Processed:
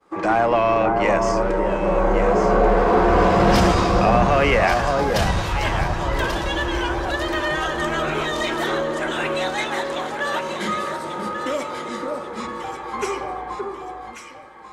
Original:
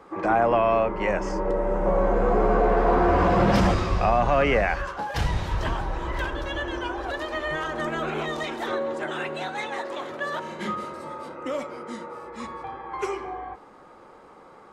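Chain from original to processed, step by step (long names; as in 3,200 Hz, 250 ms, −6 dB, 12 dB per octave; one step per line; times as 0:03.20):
downward expander −40 dBFS
high-shelf EQ 2,900 Hz +8.5 dB
in parallel at −5 dB: soft clipping −23 dBFS, distortion −8 dB
0:11.88–0:12.49: on the sum: high-frequency loss of the air 55 metres
delay that swaps between a low-pass and a high-pass 569 ms, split 1,400 Hz, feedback 58%, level −3 dB
on a send at −16 dB: convolution reverb RT60 0.45 s, pre-delay 6 ms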